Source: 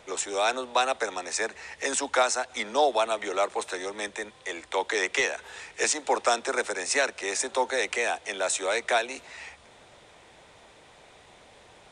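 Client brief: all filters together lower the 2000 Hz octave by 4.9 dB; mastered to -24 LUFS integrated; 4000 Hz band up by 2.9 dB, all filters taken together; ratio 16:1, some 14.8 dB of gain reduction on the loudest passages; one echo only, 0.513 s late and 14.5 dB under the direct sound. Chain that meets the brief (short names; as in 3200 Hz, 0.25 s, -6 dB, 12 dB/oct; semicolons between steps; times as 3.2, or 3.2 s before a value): bell 2000 Hz -7.5 dB; bell 4000 Hz +5.5 dB; compressor 16:1, threshold -34 dBFS; echo 0.513 s -14.5 dB; gain +14.5 dB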